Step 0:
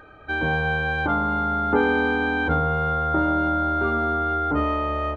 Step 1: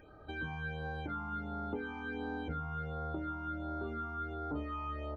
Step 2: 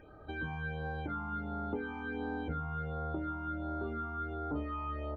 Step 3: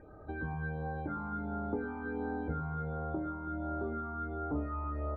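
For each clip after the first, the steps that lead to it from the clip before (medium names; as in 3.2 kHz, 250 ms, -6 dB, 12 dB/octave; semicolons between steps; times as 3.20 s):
compression 6:1, threshold -28 dBFS, peak gain reduction 12.5 dB; phase shifter stages 8, 1.4 Hz, lowest notch 500–2700 Hz; trim -6.5 dB
treble shelf 3.6 kHz -9 dB; trim +2 dB
boxcar filter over 15 samples; echo whose repeats swap between lows and highs 110 ms, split 960 Hz, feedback 74%, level -12 dB; trim +2 dB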